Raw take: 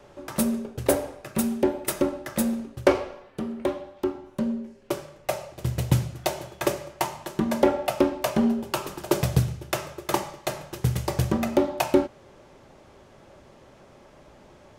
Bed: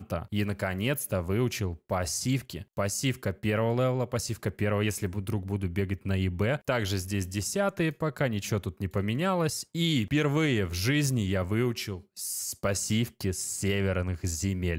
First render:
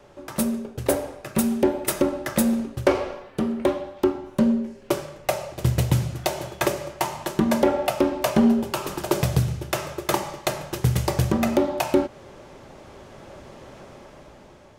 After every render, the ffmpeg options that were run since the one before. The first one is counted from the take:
-af "dynaudnorm=f=530:g=5:m=3.76,alimiter=limit=0.376:level=0:latency=1:release=213"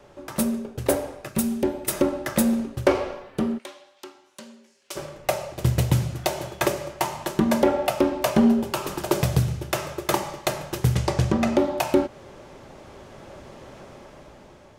-filter_complex "[0:a]asettb=1/sr,asplit=3[s0][s1][s2];[s0]atrim=end=1.294[s3];[s1]atrim=start=1.29:end=1.93,asetpts=PTS-STARTPTS,afade=t=in:d=0.004:c=qsin,afade=t=out:st=0.636:d=0.004:c=qsin,equalizer=f=900:w=0.31:g=-5.5[s4];[s2]atrim=start=1.926[s5];[s3][s4]acrossfade=d=0.004:c1=hsin:c2=qsin[s6];[s6][s5]acrossfade=d=0.004:c1=qsin:c2=hsin,asplit=3[s7][s8][s9];[s7]afade=t=out:st=3.57:d=0.02[s10];[s8]bandpass=f=6700:t=q:w=0.73,afade=t=in:st=3.57:d=0.02,afade=t=out:st=4.95:d=0.02[s11];[s9]afade=t=in:st=4.95:d=0.02[s12];[s10][s11][s12]amix=inputs=3:normalize=0,asettb=1/sr,asplit=3[s13][s14][s15];[s13]atrim=end=10.954[s16];[s14]atrim=start=10.95:end=11.58,asetpts=PTS-STARTPTS,afade=t=in:d=0.004:c=qsin,afade=t=out:st=0.626:d=0.004:c=qsin,lowpass=7500[s17];[s15]atrim=start=11.576[s18];[s16][s17]acrossfade=d=0.004:c1=hsin:c2=qsin[s19];[s19][s18]acrossfade=d=0.004:c1=qsin:c2=hsin"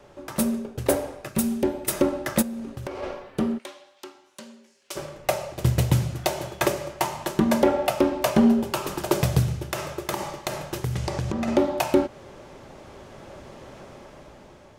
-filter_complex "[0:a]asplit=3[s0][s1][s2];[s0]afade=t=out:st=2.41:d=0.02[s3];[s1]acompressor=threshold=0.0355:ratio=16:attack=3.2:release=140:knee=1:detection=peak,afade=t=in:st=2.41:d=0.02,afade=t=out:st=3.02:d=0.02[s4];[s2]afade=t=in:st=3.02:d=0.02[s5];[s3][s4][s5]amix=inputs=3:normalize=0,asettb=1/sr,asplit=3[s6][s7][s8];[s6]atrim=end=9.624[s9];[s7]atrim=start=9.62:end=11.48,asetpts=PTS-STARTPTS,afade=t=in:d=0.004:c=qsin,afade=t=out:st=1.856:d=0.004:c=qsin,acompressor=threshold=0.0708:ratio=5:attack=3.2:release=140:knee=1:detection=peak[s10];[s8]atrim=start=11.476[s11];[s9][s10]acrossfade=d=0.004:c1=hsin:c2=qsin[s12];[s12][s11]acrossfade=d=0.004:c1=qsin:c2=hsin"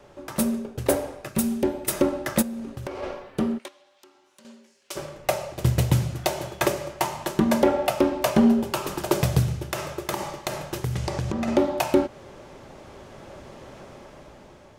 -filter_complex "[0:a]asettb=1/sr,asplit=3[s0][s1][s2];[s0]atrim=end=3.684[s3];[s1]atrim=start=3.68:end=4.45,asetpts=PTS-STARTPTS,afade=t=in:d=0.004:c=qsin,afade=t=out:st=0.766:d=0.004:c=qsin,acompressor=threshold=0.00112:ratio=2:attack=3.2:release=140:knee=1:detection=peak[s4];[s2]atrim=start=4.446[s5];[s3][s4]acrossfade=d=0.004:c1=hsin:c2=qsin[s6];[s6][s5]acrossfade=d=0.004:c1=qsin:c2=hsin"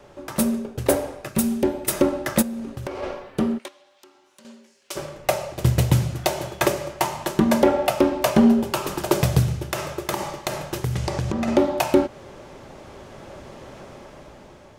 -af "volume=1.33"

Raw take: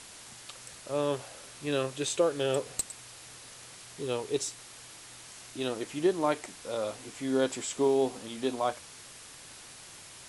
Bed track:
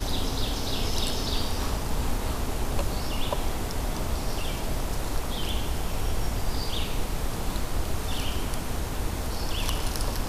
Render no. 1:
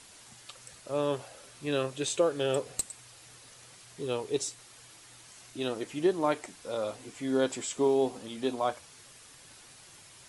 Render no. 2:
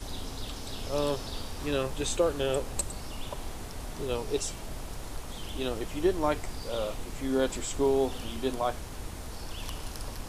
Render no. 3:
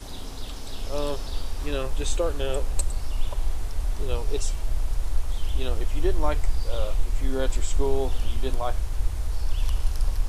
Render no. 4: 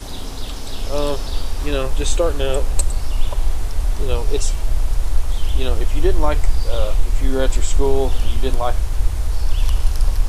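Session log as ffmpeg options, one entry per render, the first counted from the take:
-af "afftdn=nr=6:nf=-49"
-filter_complex "[1:a]volume=0.316[s0];[0:a][s0]amix=inputs=2:normalize=0"
-af "asubboost=boost=9.5:cutoff=63"
-af "volume=2.37,alimiter=limit=0.708:level=0:latency=1"

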